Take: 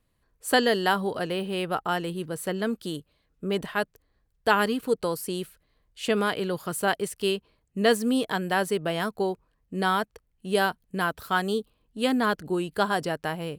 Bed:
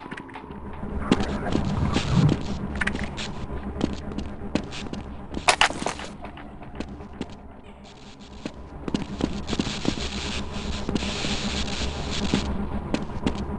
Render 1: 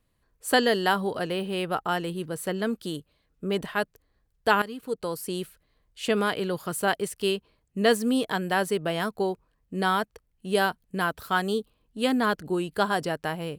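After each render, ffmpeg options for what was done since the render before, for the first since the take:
-filter_complex "[0:a]asplit=2[s0][s1];[s0]atrim=end=4.62,asetpts=PTS-STARTPTS,afade=t=out:st=4.616:d=0.004:c=hsin:silence=0.199526[s2];[s1]atrim=start=4.62,asetpts=PTS-STARTPTS,afade=t=in:d=0.75:silence=0.199526[s3];[s2][s3]concat=n=2:v=0:a=1"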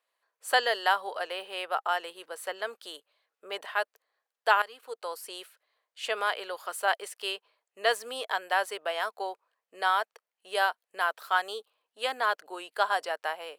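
-af "highpass=f=590:w=0.5412,highpass=f=590:w=1.3066,highshelf=f=5900:g=-7.5"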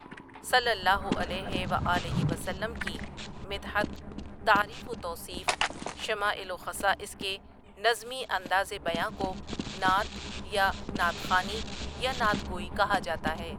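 -filter_complex "[1:a]volume=0.335[s0];[0:a][s0]amix=inputs=2:normalize=0"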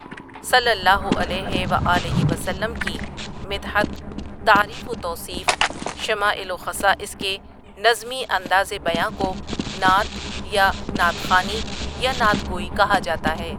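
-af "volume=2.82,alimiter=limit=0.794:level=0:latency=1"

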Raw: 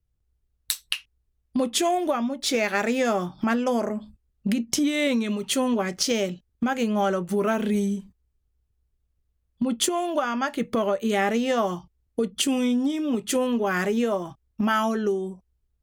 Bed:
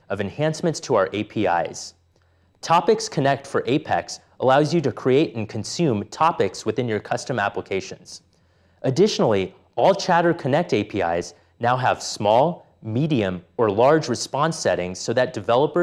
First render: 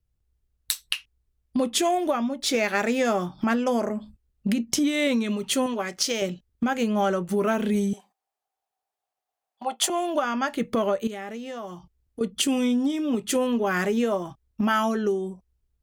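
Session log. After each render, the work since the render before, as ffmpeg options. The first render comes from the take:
-filter_complex "[0:a]asettb=1/sr,asplit=3[s0][s1][s2];[s0]atrim=end=5.664[s3];[s1]atrim=start=5.66:end=6.22,asetpts=PTS-STARTPTS,afade=t=in:d=0.004:c=qsin,afade=t=out:st=0.556:d=0.004:c=qsin,lowshelf=f=320:g=-11[s4];[s2]atrim=start=6.216[s5];[s3][s4]acrossfade=d=0.004:c1=hsin:c2=qsin[s6];[s6][s5]acrossfade=d=0.004:c1=qsin:c2=hsin,asettb=1/sr,asplit=3[s7][s8][s9];[s7]atrim=end=7.934[s10];[s8]atrim=start=7.93:end=9.9,asetpts=PTS-STARTPTS,afade=t=in:d=0.004:c=qsin,afade=t=out:st=1.966:d=0.004:c=qsin,highpass=f=750:t=q:w=9.3[s11];[s9]atrim=start=9.896[s12];[s10][s11]acrossfade=d=0.004:c1=hsin:c2=qsin[s13];[s13][s12]acrossfade=d=0.004:c1=qsin:c2=hsin,asettb=1/sr,asplit=3[s14][s15][s16];[s14]atrim=end=11.074[s17];[s15]atrim=start=11.07:end=12.21,asetpts=PTS-STARTPTS,afade=t=in:d=0.004:c=qsin,afade=t=out:st=1.136:d=0.004:c=qsin,acompressor=threshold=0.00794:ratio=2:attack=3.2:release=140:knee=1:detection=peak[s18];[s16]atrim=start=12.206[s19];[s17][s18]acrossfade=d=0.004:c1=hsin:c2=qsin[s20];[s20][s19]acrossfade=d=0.004:c1=qsin:c2=hsin"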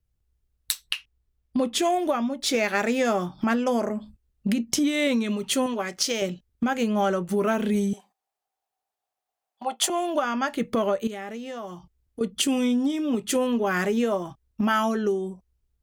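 -filter_complex "[0:a]asettb=1/sr,asplit=3[s0][s1][s2];[s0]atrim=end=0.724[s3];[s1]atrim=start=0.72:end=1.82,asetpts=PTS-STARTPTS,afade=t=in:d=0.004:c=qsin,afade=t=out:st=1.096:d=0.004:c=qsin,equalizer=f=11000:t=o:w=1.7:g=-4.5[s4];[s2]atrim=start=1.816[s5];[s3][s4]acrossfade=d=0.004:c1=hsin:c2=qsin[s6];[s6][s5]acrossfade=d=0.004:c1=qsin:c2=hsin"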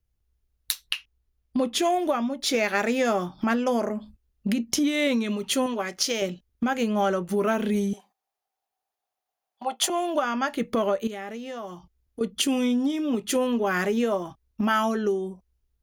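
-af "equalizer=f=130:t=o:w=0.89:g=-4,bandreject=f=8000:w=6.3"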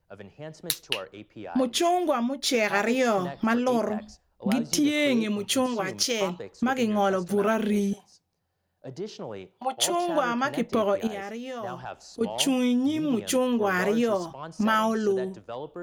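-filter_complex "[1:a]volume=0.119[s0];[0:a][s0]amix=inputs=2:normalize=0"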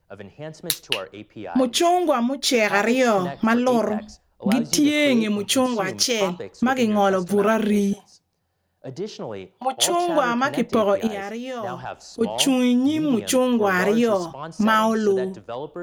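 -af "volume=1.78,alimiter=limit=0.708:level=0:latency=1"

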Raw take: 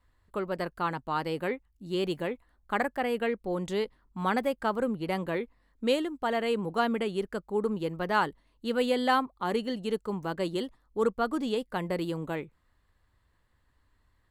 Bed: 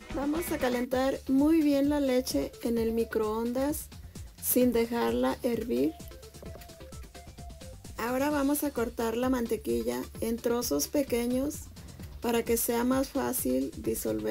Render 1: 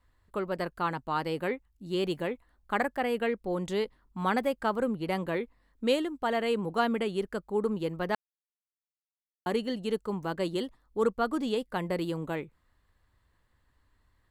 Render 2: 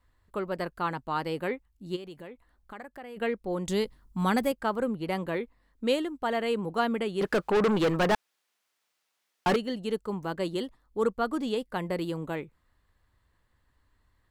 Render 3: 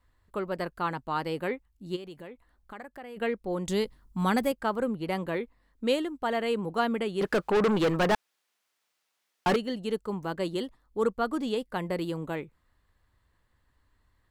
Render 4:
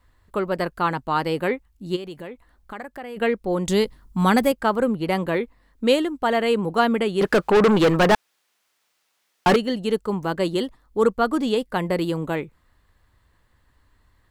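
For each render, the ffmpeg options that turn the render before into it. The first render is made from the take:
-filter_complex "[0:a]asplit=3[s0][s1][s2];[s0]atrim=end=8.15,asetpts=PTS-STARTPTS,afade=t=out:st=8.146:d=0.004:c=hsin[s3];[s1]atrim=start=8.15:end=9.46,asetpts=PTS-STARTPTS,volume=0[s4];[s2]atrim=start=9.46,asetpts=PTS-STARTPTS,afade=t=in:d=0.004:c=hsin[s5];[s3][s4][s5]concat=n=3:v=0:a=1"
-filter_complex "[0:a]asplit=3[s0][s1][s2];[s0]afade=t=out:st=1.95:d=0.02[s3];[s1]acompressor=threshold=0.00501:ratio=2.5:attack=3.2:release=140:knee=1:detection=peak,afade=t=in:st=1.95:d=0.02,afade=t=out:st=3.16:d=0.02[s4];[s2]afade=t=in:st=3.16:d=0.02[s5];[s3][s4][s5]amix=inputs=3:normalize=0,asettb=1/sr,asplit=3[s6][s7][s8];[s6]atrim=end=3.674[s9];[s7]atrim=start=3.67:end=4.52,asetpts=PTS-STARTPTS,afade=t=in:d=0.004:c=qsin,afade=t=out:st=0.846:d=0.004:c=qsin,bass=f=250:g=8,treble=f=4000:g=9[s10];[s8]atrim=start=4.516[s11];[s9][s10]acrossfade=d=0.004:c1=hsin:c2=qsin[s12];[s12][s11]acrossfade=d=0.004:c1=qsin:c2=hsin,asettb=1/sr,asplit=3[s13][s14][s15];[s13]atrim=end=7.214[s16];[s14]atrim=start=7.21:end=9.56,asetpts=PTS-STARTPTS,afade=t=in:d=0.004:c=qsin,afade=t=out:st=2.346:d=0.004:c=qsin,asplit=2[s17][s18];[s18]highpass=f=720:p=1,volume=31.6,asoftclip=type=tanh:threshold=0.15[s19];[s17][s19]amix=inputs=2:normalize=0,lowpass=f=3500:p=1,volume=0.501[s20];[s15]atrim=start=9.556[s21];[s16][s20]acrossfade=d=0.004:c1=hsin:c2=qsin[s22];[s22][s21]acrossfade=d=0.004:c1=qsin:c2=hsin"
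-af anull
-af "volume=2.51"

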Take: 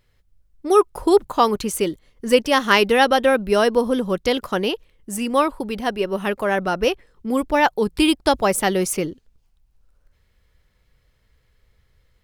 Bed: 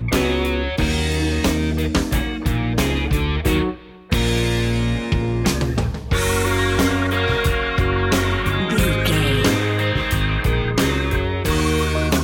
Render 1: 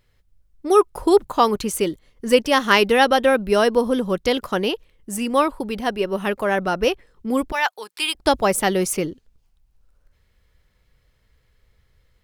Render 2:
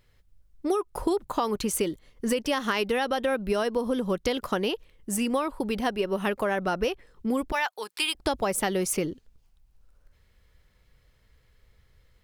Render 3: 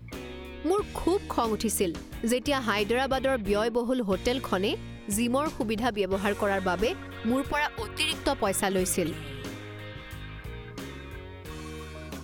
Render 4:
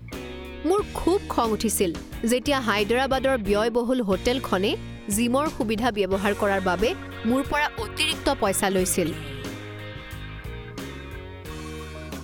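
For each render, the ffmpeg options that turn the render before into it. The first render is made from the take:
-filter_complex "[0:a]asettb=1/sr,asplit=3[s0][s1][s2];[s0]atrim=end=7.524[s3];[s1]atrim=start=7.52:end=8.15,asetpts=PTS-STARTPTS,afade=t=in:d=0.004:c=qsin,afade=t=out:st=0.626:d=0.004:c=qsin,highpass=1100[s4];[s2]atrim=start=8.146[s5];[s3][s4]acrossfade=d=0.004:c1=hsin:c2=qsin[s6];[s6][s5]acrossfade=d=0.004:c1=qsin:c2=hsin"
-af "alimiter=limit=0.376:level=0:latency=1:release=76,acompressor=threshold=0.0708:ratio=6"
-filter_complex "[1:a]volume=0.0891[s0];[0:a][s0]amix=inputs=2:normalize=0"
-af "volume=1.58"

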